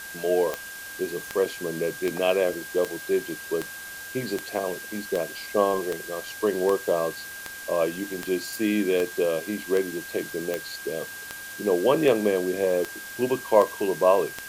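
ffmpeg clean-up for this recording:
ffmpeg -i in.wav -af "adeclick=threshold=4,bandreject=frequency=1600:width=30,afftdn=noise_reduction=30:noise_floor=-39" out.wav

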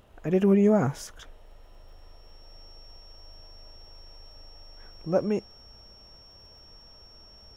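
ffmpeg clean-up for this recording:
ffmpeg -i in.wav -af "adeclick=threshold=4,bandreject=frequency=5500:width=30" out.wav

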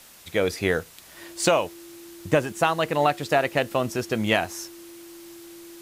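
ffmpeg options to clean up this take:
ffmpeg -i in.wav -af "adeclick=threshold=4,bandreject=frequency=340:width=30,afwtdn=0.004" out.wav

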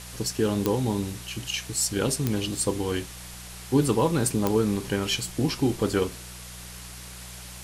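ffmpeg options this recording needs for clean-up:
ffmpeg -i in.wav -af "adeclick=threshold=4,bandreject=frequency=60.6:width_type=h:width=4,bandreject=frequency=121.2:width_type=h:width=4,bandreject=frequency=181.8:width_type=h:width=4,afftdn=noise_reduction=30:noise_floor=-41" out.wav

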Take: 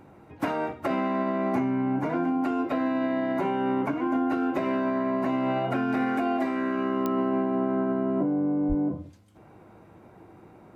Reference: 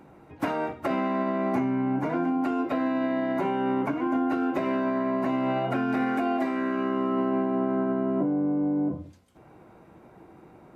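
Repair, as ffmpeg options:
ffmpeg -i in.wav -filter_complex "[0:a]adeclick=threshold=4,bandreject=frequency=103:width_type=h:width=4,bandreject=frequency=206:width_type=h:width=4,bandreject=frequency=309:width_type=h:width=4,asplit=3[link_01][link_02][link_03];[link_01]afade=type=out:start_time=8.68:duration=0.02[link_04];[link_02]highpass=frequency=140:width=0.5412,highpass=frequency=140:width=1.3066,afade=type=in:start_time=8.68:duration=0.02,afade=type=out:start_time=8.8:duration=0.02[link_05];[link_03]afade=type=in:start_time=8.8:duration=0.02[link_06];[link_04][link_05][link_06]amix=inputs=3:normalize=0" out.wav

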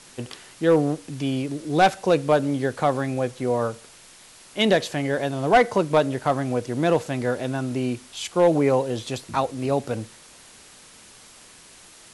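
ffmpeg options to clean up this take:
ffmpeg -i in.wav -af "afwtdn=0.005" out.wav

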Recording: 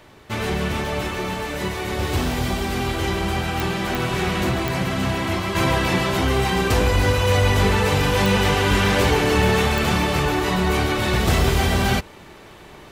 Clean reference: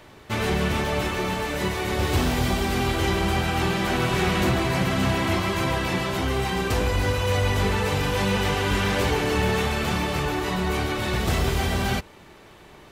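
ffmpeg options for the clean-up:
ffmpeg -i in.wav -af "adeclick=threshold=4,asetnsamples=nb_out_samples=441:pad=0,asendcmd='5.55 volume volume -5dB',volume=0dB" out.wav

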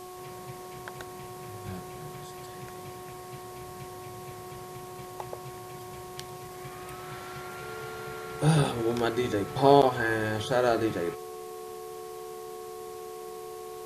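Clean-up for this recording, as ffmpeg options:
ffmpeg -i in.wav -af "bandreject=frequency=365.4:width_type=h:width=4,bandreject=frequency=730.8:width_type=h:width=4,bandreject=frequency=1096.2:width_type=h:width=4,bandreject=frequency=440:width=30,afwtdn=0.0028" out.wav

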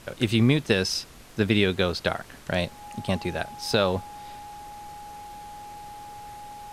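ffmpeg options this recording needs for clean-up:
ffmpeg -i in.wav -af "adeclick=threshold=4,bandreject=frequency=830:width=30,afftdn=noise_reduction=24:noise_floor=-46" out.wav

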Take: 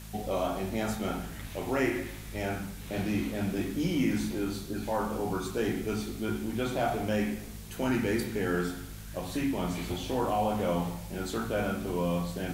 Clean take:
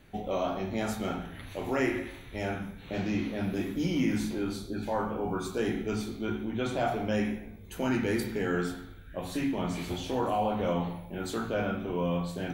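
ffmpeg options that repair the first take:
ffmpeg -i in.wav -af "bandreject=frequency=53.1:width_type=h:width=4,bandreject=frequency=106.2:width_type=h:width=4,bandreject=frequency=159.3:width_type=h:width=4,bandreject=frequency=212.4:width_type=h:width=4,afwtdn=0.0032" out.wav

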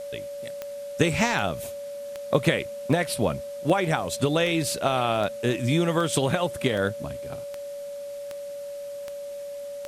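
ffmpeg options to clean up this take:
ffmpeg -i in.wav -af "adeclick=threshold=4,bandreject=frequency=570:width=30,afwtdn=0.0028" out.wav

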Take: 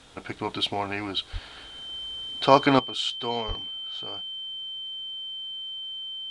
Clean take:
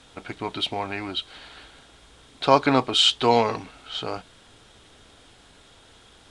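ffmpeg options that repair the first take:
ffmpeg -i in.wav -filter_complex "[0:a]bandreject=frequency=3100:width=30,asplit=3[link_01][link_02][link_03];[link_01]afade=type=out:start_time=1.32:duration=0.02[link_04];[link_02]highpass=frequency=140:width=0.5412,highpass=frequency=140:width=1.3066,afade=type=in:start_time=1.32:duration=0.02,afade=type=out:start_time=1.44:duration=0.02[link_05];[link_03]afade=type=in:start_time=1.44:duration=0.02[link_06];[link_04][link_05][link_06]amix=inputs=3:normalize=0,asplit=3[link_07][link_08][link_09];[link_07]afade=type=out:start_time=3.47:duration=0.02[link_10];[link_08]highpass=frequency=140:width=0.5412,highpass=frequency=140:width=1.3066,afade=type=in:start_time=3.47:duration=0.02,afade=type=out:start_time=3.59:duration=0.02[link_11];[link_09]afade=type=in:start_time=3.59:duration=0.02[link_12];[link_10][link_11][link_12]amix=inputs=3:normalize=0,asetnsamples=nb_out_samples=441:pad=0,asendcmd='2.79 volume volume 11.5dB',volume=0dB" out.wav

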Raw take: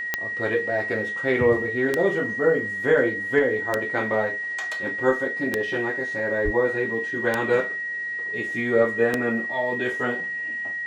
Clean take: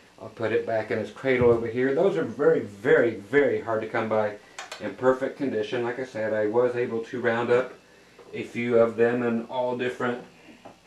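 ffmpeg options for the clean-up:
ffmpeg -i in.wav -filter_complex "[0:a]adeclick=threshold=4,bandreject=frequency=1900:width=30,asplit=3[link_01][link_02][link_03];[link_01]afade=type=out:start_time=6.44:duration=0.02[link_04];[link_02]highpass=frequency=140:width=0.5412,highpass=frequency=140:width=1.3066,afade=type=in:start_time=6.44:duration=0.02,afade=type=out:start_time=6.56:duration=0.02[link_05];[link_03]afade=type=in:start_time=6.56:duration=0.02[link_06];[link_04][link_05][link_06]amix=inputs=3:normalize=0" out.wav

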